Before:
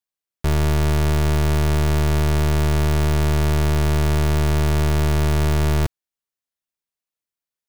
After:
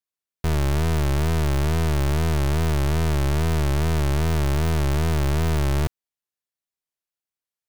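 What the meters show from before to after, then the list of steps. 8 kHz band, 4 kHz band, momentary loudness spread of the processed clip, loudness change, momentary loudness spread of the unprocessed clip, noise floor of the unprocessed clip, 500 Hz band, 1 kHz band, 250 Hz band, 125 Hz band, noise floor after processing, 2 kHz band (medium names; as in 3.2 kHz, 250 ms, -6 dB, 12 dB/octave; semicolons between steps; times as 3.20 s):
-3.0 dB, -3.0 dB, 1 LU, -3.0 dB, 1 LU, under -85 dBFS, -3.5 dB, -2.5 dB, -3.0 dB, -3.0 dB, under -85 dBFS, -3.0 dB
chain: wow and flutter 140 cents; trim -3 dB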